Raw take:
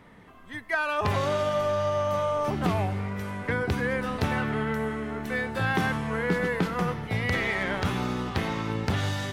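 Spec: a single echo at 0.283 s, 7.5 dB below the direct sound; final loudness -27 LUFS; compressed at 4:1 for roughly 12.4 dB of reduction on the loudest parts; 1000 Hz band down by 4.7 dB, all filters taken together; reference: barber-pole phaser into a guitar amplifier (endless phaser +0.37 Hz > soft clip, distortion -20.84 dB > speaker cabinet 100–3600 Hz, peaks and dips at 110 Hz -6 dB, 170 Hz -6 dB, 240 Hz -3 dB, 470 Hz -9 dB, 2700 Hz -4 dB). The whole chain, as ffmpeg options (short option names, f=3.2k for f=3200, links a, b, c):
-filter_complex "[0:a]equalizer=f=1k:t=o:g=-5.5,acompressor=threshold=-37dB:ratio=4,aecho=1:1:283:0.422,asplit=2[a][b];[b]afreqshift=0.37[c];[a][c]amix=inputs=2:normalize=1,asoftclip=threshold=-32.5dB,highpass=100,equalizer=f=110:t=q:w=4:g=-6,equalizer=f=170:t=q:w=4:g=-6,equalizer=f=240:t=q:w=4:g=-3,equalizer=f=470:t=q:w=4:g=-9,equalizer=f=2.7k:t=q:w=4:g=-4,lowpass=f=3.6k:w=0.5412,lowpass=f=3.6k:w=1.3066,volume=18.5dB"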